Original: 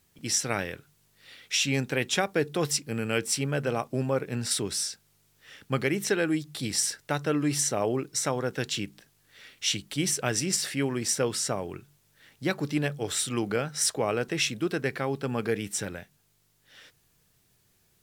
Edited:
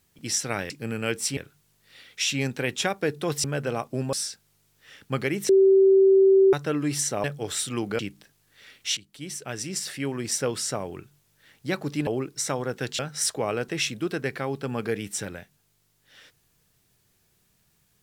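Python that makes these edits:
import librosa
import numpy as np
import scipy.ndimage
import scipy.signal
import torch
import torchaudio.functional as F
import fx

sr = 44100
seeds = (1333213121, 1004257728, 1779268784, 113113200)

y = fx.edit(x, sr, fx.move(start_s=2.77, length_s=0.67, to_s=0.7),
    fx.cut(start_s=4.13, length_s=0.6),
    fx.bleep(start_s=6.09, length_s=1.04, hz=386.0, db=-13.0),
    fx.swap(start_s=7.84, length_s=0.92, other_s=12.84, other_length_s=0.75),
    fx.fade_in_from(start_s=9.74, length_s=1.38, floor_db=-16.0), tone=tone)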